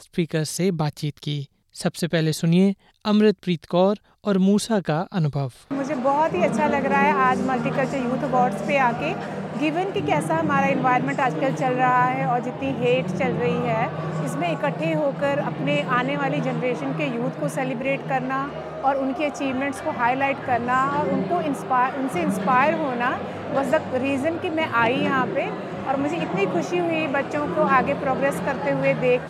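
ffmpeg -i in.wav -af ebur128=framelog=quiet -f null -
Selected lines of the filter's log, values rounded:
Integrated loudness:
  I:         -22.6 LUFS
  Threshold: -32.6 LUFS
Loudness range:
  LRA:         2.8 LU
  Threshold: -42.6 LUFS
  LRA low:   -24.1 LUFS
  LRA high:  -21.3 LUFS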